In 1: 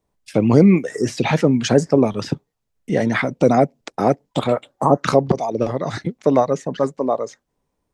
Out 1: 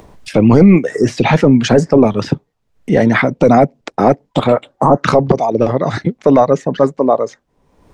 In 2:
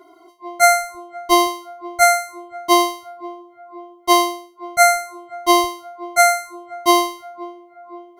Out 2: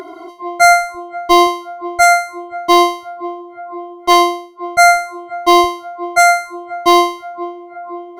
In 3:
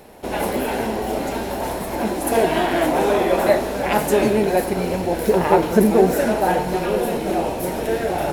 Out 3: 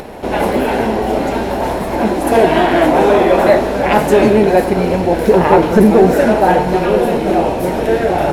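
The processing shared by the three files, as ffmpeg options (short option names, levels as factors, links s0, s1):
-af "lowpass=f=3100:p=1,acompressor=mode=upward:threshold=0.0282:ratio=2.5,apsyclip=2.99,volume=0.841"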